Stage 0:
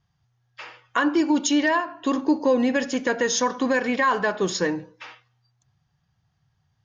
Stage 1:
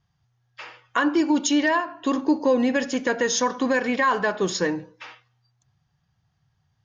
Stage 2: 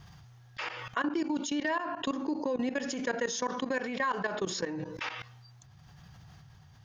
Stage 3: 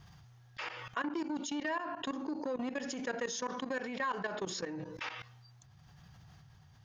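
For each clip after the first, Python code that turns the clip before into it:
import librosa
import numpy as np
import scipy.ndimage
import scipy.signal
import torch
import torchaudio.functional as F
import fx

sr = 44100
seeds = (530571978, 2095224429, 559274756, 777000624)

y1 = x
y2 = fx.level_steps(y1, sr, step_db=21)
y2 = y2 * (1.0 - 0.37 / 2.0 + 0.37 / 2.0 * np.cos(2.0 * np.pi * 0.97 * (np.arange(len(y2)) / sr)))
y2 = fx.env_flatten(y2, sr, amount_pct=70)
y2 = y2 * 10.0 ** (-8.0 / 20.0)
y3 = fx.transformer_sat(y2, sr, knee_hz=690.0)
y3 = y3 * 10.0 ** (-4.0 / 20.0)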